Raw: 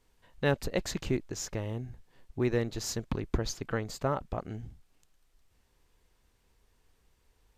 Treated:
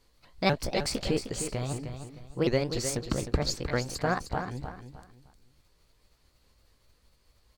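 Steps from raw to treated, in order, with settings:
pitch shifter swept by a sawtooth +5.5 semitones, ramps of 247 ms
parametric band 4,400 Hz +11.5 dB 0.23 octaves
repeating echo 308 ms, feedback 29%, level −9 dB
level +3.5 dB

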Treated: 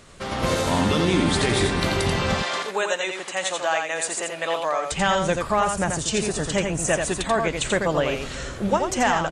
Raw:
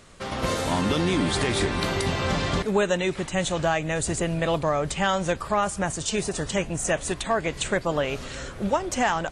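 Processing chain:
0:02.34–0:04.92: high-pass filter 630 Hz 12 dB per octave
single-tap delay 86 ms −5 dB
level +2 dB

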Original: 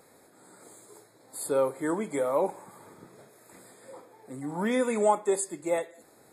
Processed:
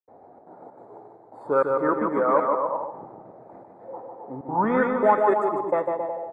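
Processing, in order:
0:01.92–0:02.78: high-pass filter 160 Hz 24 dB per octave
in parallel at −9.5 dB: soft clipping −26 dBFS, distortion −10 dB
on the sum: gate pattern ".xxxx.xxx.xxxxx." 194 BPM −60 dB
bouncing-ball delay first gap 150 ms, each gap 0.8×, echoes 5
on a send at −17.5 dB: convolution reverb RT60 1.8 s, pre-delay 52 ms
on the sum: envelope-controlled low-pass 760–1,600 Hz up, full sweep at −18 dBFS
level +1 dB

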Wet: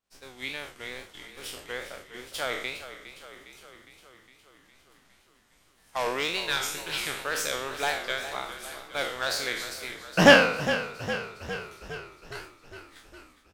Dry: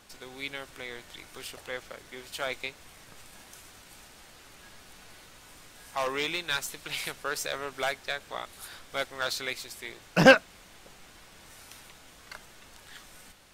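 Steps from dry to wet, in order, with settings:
peak hold with a decay on every bin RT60 0.66 s
tape wow and flutter 130 cents
downward expander −38 dBFS
echo with shifted repeats 409 ms, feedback 64%, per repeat −31 Hz, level −12.5 dB

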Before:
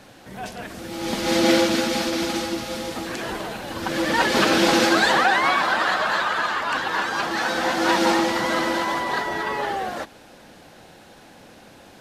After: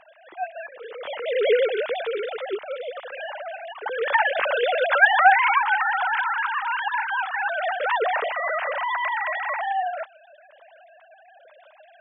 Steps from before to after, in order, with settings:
three sine waves on the formant tracks
level −1.5 dB

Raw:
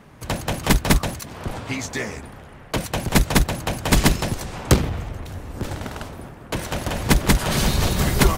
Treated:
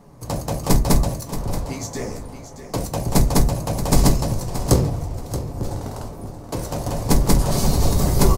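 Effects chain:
flat-topped bell 2,200 Hz −11.5 dB
repeating echo 627 ms, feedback 25%, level −11.5 dB
on a send at −3.5 dB: convolution reverb RT60 0.30 s, pre-delay 6 ms
on the sum: level −1 dB

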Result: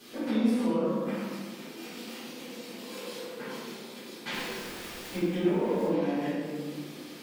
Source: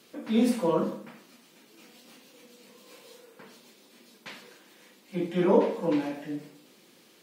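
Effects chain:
brickwall limiter −20 dBFS, peak gain reduction 11 dB
0:04.30–0:05.87: surface crackle 600 per second −39 dBFS
downward compressor 6 to 1, threshold −39 dBFS, peak gain reduction 14 dB
convolution reverb RT60 1.6 s, pre-delay 3 ms, DRR −10.5 dB

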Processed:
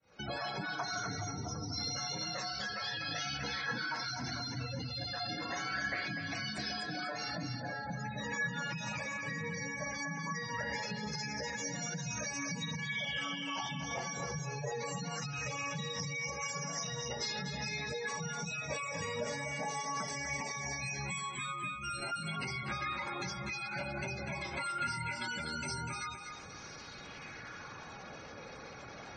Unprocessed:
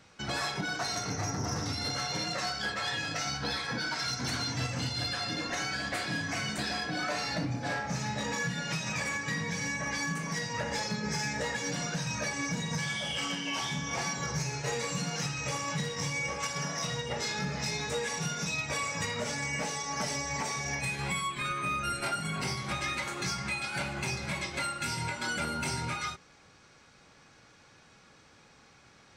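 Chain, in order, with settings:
fade in at the beginning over 0.62 s
gate on every frequency bin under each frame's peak −15 dB strong
downward compressor 5 to 1, threshold −49 dBFS, peak gain reduction 17 dB
on a send: feedback echo with a high-pass in the loop 246 ms, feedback 30%, high-pass 360 Hz, level −6 dB
on the sum: auto-filter bell 0.21 Hz 520–7,200 Hz +7 dB
level +9 dB

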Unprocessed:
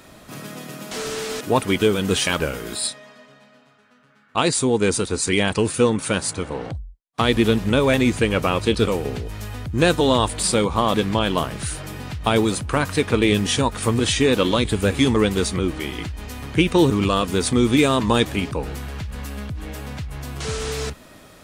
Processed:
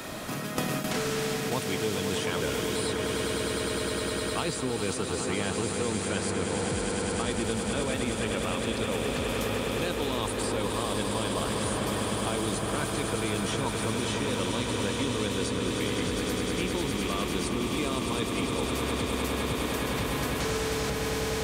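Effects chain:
low-shelf EQ 140 Hz −6 dB
reversed playback
downward compressor 6 to 1, threshold −31 dBFS, peak gain reduction 17.5 dB
reversed playback
echo that builds up and dies away 102 ms, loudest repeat 8, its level −9 dB
noise gate with hold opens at −25 dBFS
multiband upward and downward compressor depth 100%

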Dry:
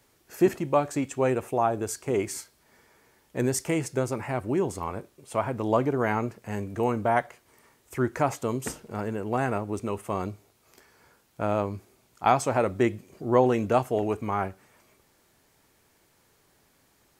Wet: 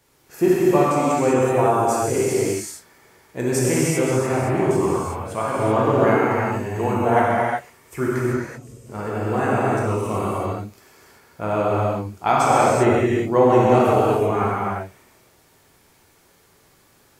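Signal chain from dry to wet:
0:08.19–0:08.86: guitar amp tone stack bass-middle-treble 10-0-1
reverb whose tail is shaped and stops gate 410 ms flat, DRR −7.5 dB

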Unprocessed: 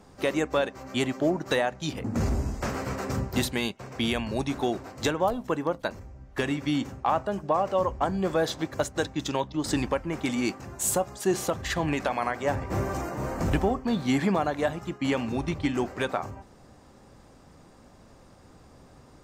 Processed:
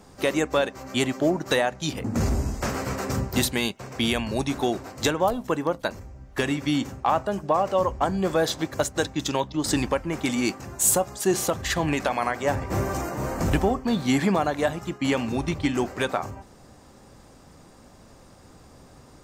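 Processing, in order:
high-shelf EQ 5,100 Hz +6 dB
level +2.5 dB

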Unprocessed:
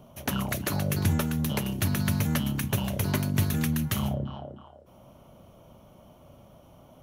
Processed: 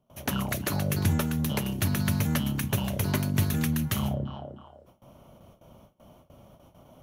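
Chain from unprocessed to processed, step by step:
noise gate with hold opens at −43 dBFS

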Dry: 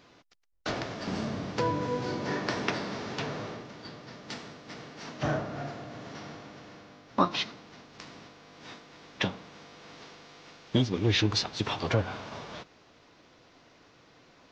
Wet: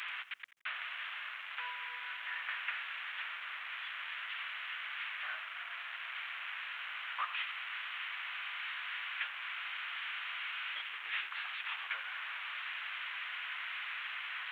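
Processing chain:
linear delta modulator 16 kbit/s, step −28 dBFS
high-pass filter 1,400 Hz 24 dB per octave
feedback echo at a low word length 86 ms, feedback 35%, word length 10 bits, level −15 dB
level −2 dB

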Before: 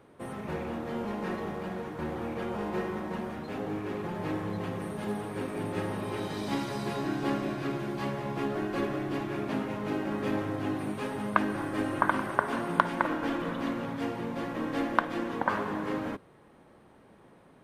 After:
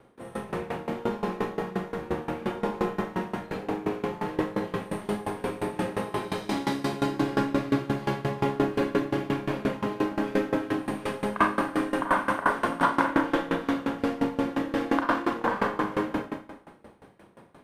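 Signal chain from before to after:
four-comb reverb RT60 1.3 s, combs from 32 ms, DRR −6.5 dB
tremolo with a ramp in dB decaying 5.7 Hz, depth 20 dB
level +3 dB

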